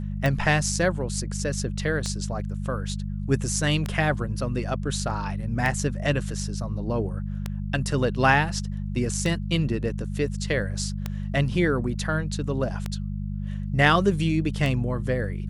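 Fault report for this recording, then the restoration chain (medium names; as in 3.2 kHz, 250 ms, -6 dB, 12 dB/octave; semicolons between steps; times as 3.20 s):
hum 50 Hz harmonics 4 -30 dBFS
tick 33 1/3 rpm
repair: de-click; de-hum 50 Hz, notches 4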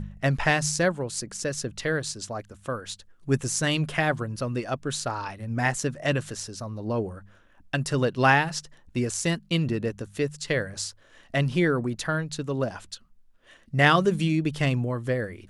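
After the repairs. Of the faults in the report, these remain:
nothing left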